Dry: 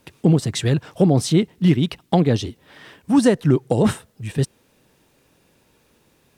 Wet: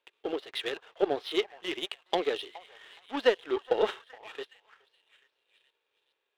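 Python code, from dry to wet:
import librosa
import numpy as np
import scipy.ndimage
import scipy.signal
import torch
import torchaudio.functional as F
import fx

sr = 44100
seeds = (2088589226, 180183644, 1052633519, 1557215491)

y = scipy.signal.sosfilt(scipy.signal.ellip(3, 1.0, 40, [400.0, 3400.0], 'bandpass', fs=sr, output='sos'), x)
y = fx.high_shelf(y, sr, hz=2000.0, db=11.5)
y = fx.echo_stepped(y, sr, ms=419, hz=970.0, octaves=0.7, feedback_pct=70, wet_db=-9.0)
y = fx.hpss(y, sr, part='percussive', gain_db=-7)
y = fx.power_curve(y, sr, exponent=1.4)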